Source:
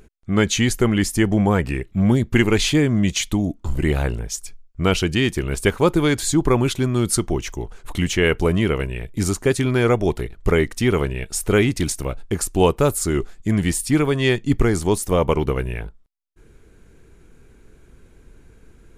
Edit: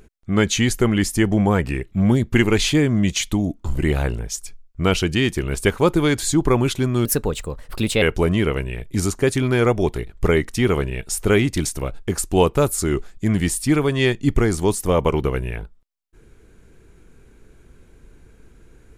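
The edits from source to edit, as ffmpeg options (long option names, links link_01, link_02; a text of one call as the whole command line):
ffmpeg -i in.wav -filter_complex "[0:a]asplit=3[link_01][link_02][link_03];[link_01]atrim=end=7.054[link_04];[link_02]atrim=start=7.05:end=8.25,asetpts=PTS-STARTPTS,asetrate=54684,aresample=44100,atrim=end_sample=42677,asetpts=PTS-STARTPTS[link_05];[link_03]atrim=start=8.246[link_06];[link_04][link_05]acrossfade=duration=0.004:curve1=hsin:curve2=hsin[link_07];[link_07][link_06]acrossfade=duration=0.004:curve1=hsin:curve2=hsin" out.wav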